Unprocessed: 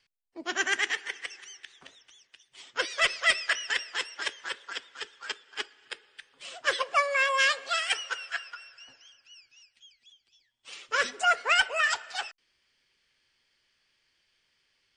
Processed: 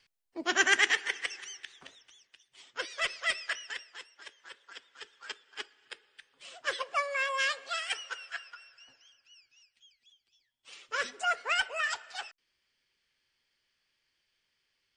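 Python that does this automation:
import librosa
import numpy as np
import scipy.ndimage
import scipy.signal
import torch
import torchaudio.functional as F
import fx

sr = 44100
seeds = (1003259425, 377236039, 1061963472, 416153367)

y = fx.gain(x, sr, db=fx.line((1.42, 3.0), (2.77, -7.0), (3.52, -7.0), (4.15, -17.5), (5.27, -6.0)))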